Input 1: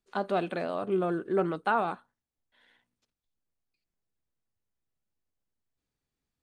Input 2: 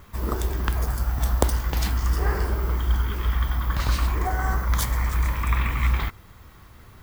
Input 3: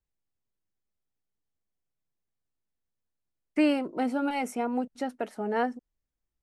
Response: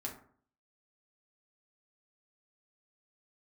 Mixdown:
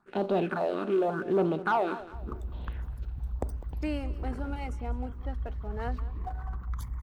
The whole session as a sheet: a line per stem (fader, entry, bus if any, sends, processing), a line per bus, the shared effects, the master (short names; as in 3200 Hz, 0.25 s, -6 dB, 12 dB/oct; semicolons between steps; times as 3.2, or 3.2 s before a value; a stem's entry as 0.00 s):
-1.5 dB, 0.00 s, no send, echo send -16.5 dB, per-bin compression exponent 0.6; LPF 2300 Hz 6 dB/oct; phaser stages 4, 0.87 Hz, lowest notch 110–1700 Hz
-15.0 dB, 2.00 s, send -14 dB, echo send -18 dB, formant sharpening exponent 2
-13.5 dB, 0.25 s, no send, echo send -17.5 dB, low-pass opened by the level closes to 330 Hz, open at -25 dBFS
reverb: on, RT60 0.55 s, pre-delay 4 ms
echo: feedback echo 0.202 s, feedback 35%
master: sample leveller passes 1